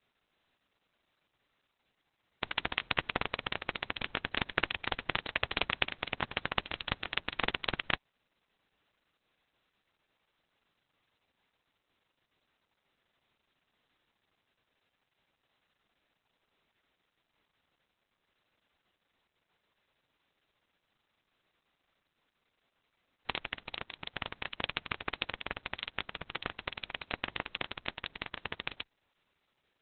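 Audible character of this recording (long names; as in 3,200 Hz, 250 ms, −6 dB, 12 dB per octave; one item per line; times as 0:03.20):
aliases and images of a low sample rate 8,800 Hz, jitter 0%
Opus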